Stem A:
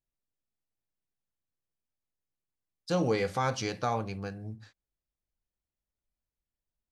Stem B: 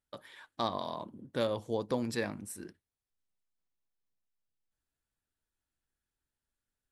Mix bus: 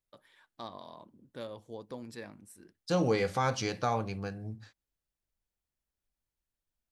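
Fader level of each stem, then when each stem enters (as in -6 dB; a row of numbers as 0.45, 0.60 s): 0.0, -10.5 dB; 0.00, 0.00 s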